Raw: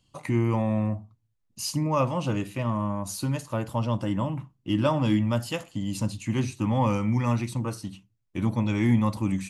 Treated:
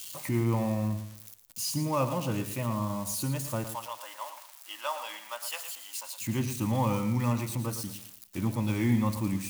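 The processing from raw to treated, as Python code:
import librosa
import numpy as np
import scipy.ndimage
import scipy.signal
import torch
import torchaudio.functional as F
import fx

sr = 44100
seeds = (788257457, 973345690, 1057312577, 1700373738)

y = x + 0.5 * 10.0 ** (-28.0 / 20.0) * np.diff(np.sign(x), prepend=np.sign(x[:1]))
y = fx.highpass(y, sr, hz=740.0, slope=24, at=(3.64, 6.21))
y = fx.echo_feedback(y, sr, ms=113, feedback_pct=30, wet_db=-10.5)
y = y * librosa.db_to_amplitude(-4.0)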